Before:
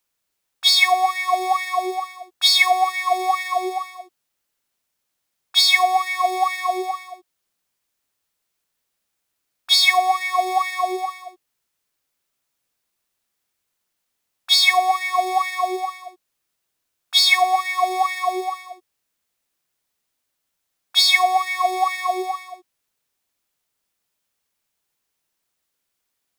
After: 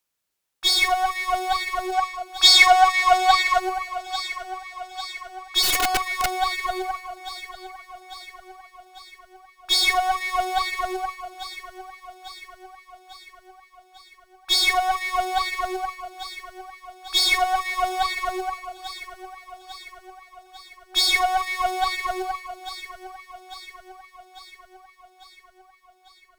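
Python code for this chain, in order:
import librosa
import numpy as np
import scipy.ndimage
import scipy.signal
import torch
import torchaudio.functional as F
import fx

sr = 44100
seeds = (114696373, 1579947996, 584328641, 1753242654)

p1 = np.clip(x, -10.0 ** (-21.0 / 20.0), 10.0 ** (-21.0 / 20.0))
p2 = x + (p1 * librosa.db_to_amplitude(-7.0))
p3 = fx.cheby_harmonics(p2, sr, harmonics=(6,), levels_db=(-20,), full_scale_db=-2.5)
p4 = fx.spec_box(p3, sr, start_s=1.92, length_s=1.67, low_hz=450.0, high_hz=8200.0, gain_db=7)
p5 = p4 + fx.echo_feedback(p4, sr, ms=848, feedback_pct=59, wet_db=-14.0, dry=0)
p6 = fx.overflow_wrap(p5, sr, gain_db=9.0, at=(5.62, 6.28), fade=0.02)
y = p6 * librosa.db_to_amplitude(-6.0)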